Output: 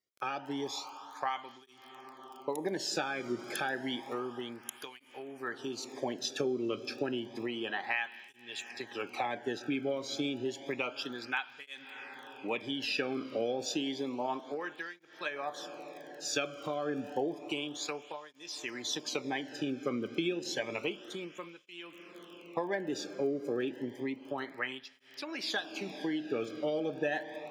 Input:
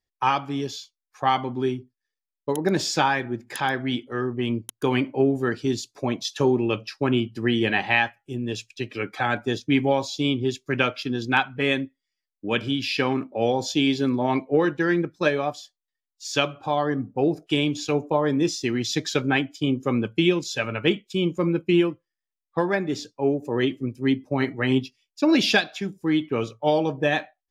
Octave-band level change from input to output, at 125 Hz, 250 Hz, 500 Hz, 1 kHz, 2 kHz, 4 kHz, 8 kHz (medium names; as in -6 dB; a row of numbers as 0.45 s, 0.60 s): -21.0 dB, -14.0 dB, -11.5 dB, -12.5 dB, -11.5 dB, -10.0 dB, -6.5 dB